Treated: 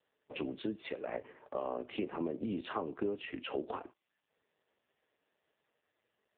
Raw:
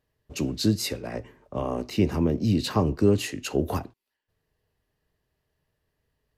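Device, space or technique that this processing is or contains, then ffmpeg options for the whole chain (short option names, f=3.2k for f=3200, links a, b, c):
voicemail: -af "highpass=370,lowpass=3.2k,acompressor=threshold=-39dB:ratio=6,volume=6dB" -ar 8000 -c:a libopencore_amrnb -b:a 4750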